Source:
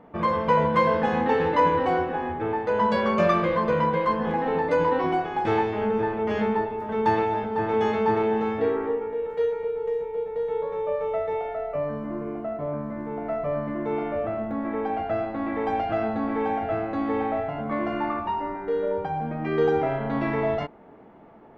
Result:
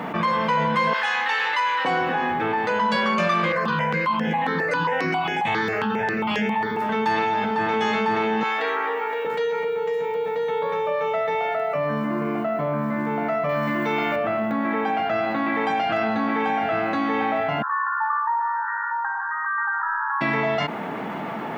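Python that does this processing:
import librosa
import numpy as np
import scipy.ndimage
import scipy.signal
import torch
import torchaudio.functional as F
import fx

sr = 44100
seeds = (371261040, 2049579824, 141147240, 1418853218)

y = fx.highpass(x, sr, hz=1200.0, slope=12, at=(0.93, 1.85))
y = fx.phaser_held(y, sr, hz=7.4, low_hz=920.0, high_hz=4100.0, at=(3.52, 6.77))
y = fx.highpass(y, sr, hz=690.0, slope=12, at=(8.43, 9.25))
y = fx.high_shelf(y, sr, hz=3000.0, db=11.0, at=(13.49, 14.16))
y = fx.brickwall_bandpass(y, sr, low_hz=820.0, high_hz=1900.0, at=(17.62, 20.21))
y = scipy.signal.sosfilt(scipy.signal.butter(4, 160.0, 'highpass', fs=sr, output='sos'), y)
y = fx.peak_eq(y, sr, hz=410.0, db=-15.0, octaves=2.6)
y = fx.env_flatten(y, sr, amount_pct=70)
y = y * librosa.db_to_amplitude(5.5)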